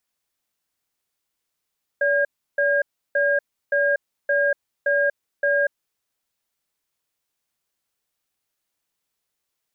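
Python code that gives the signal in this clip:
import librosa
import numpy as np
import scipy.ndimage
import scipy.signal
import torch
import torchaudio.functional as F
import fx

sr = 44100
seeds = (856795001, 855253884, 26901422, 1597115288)

y = fx.cadence(sr, length_s=3.77, low_hz=572.0, high_hz=1620.0, on_s=0.24, off_s=0.33, level_db=-19.5)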